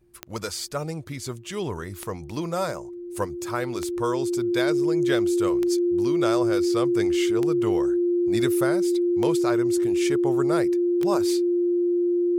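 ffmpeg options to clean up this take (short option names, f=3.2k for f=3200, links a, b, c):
-af "adeclick=t=4,bandreject=f=350:w=30"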